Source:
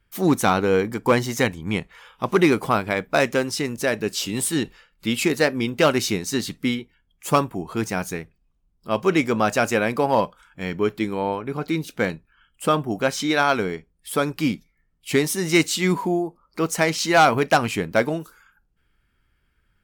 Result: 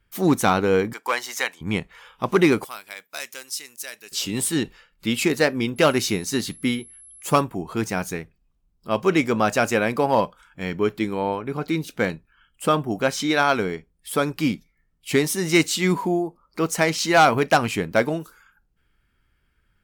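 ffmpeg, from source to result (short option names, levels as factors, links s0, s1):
-filter_complex "[0:a]asettb=1/sr,asplit=3[s0][s1][s2];[s0]atrim=end=0.934[s3];[s1]atrim=start=0.93:end=1.61,asetpts=PTS-STARTPTS,afade=t=in:d=0.004:c=qsin,afade=t=out:st=0.676:d=0.004:c=qsin,highpass=880[s4];[s2]atrim=start=1.606[s5];[s3][s4]acrossfade=d=0.004:c1=hsin:c2=qsin[s6];[s6][s5]acrossfade=d=0.004:c1=qsin:c2=hsin,asettb=1/sr,asplit=3[s7][s8][s9];[s7]atrim=end=2.644[s10];[s8]atrim=start=2.64:end=4.12,asetpts=PTS-STARTPTS,afade=t=in:d=0.004:c=qsin,afade=t=out:st=1.476:d=0.004:c=qsin,aderivative[s11];[s9]atrim=start=4.116[s12];[s10][s11]acrossfade=d=0.004:c1=hsin:c2=qsin[s13];[s13][s12]acrossfade=d=0.004:c1=qsin:c2=hsin,asettb=1/sr,asplit=3[s14][s15][s16];[s14]atrim=end=5.764[s17];[s15]atrim=start=5.76:end=7.41,asetpts=PTS-STARTPTS,afade=t=in:d=0.004:c=qsin,afade=t=out:st=1.646:d=0.004:c=qsin,aeval=exprs='val(0)+0.00631*sin(2*PI*11000*n/s)':c=same[s18];[s16]atrim=start=7.406[s19];[s17][s18]acrossfade=d=0.004:c1=hsin:c2=qsin[s20];[s20][s19]acrossfade=d=0.004:c1=qsin:c2=hsin"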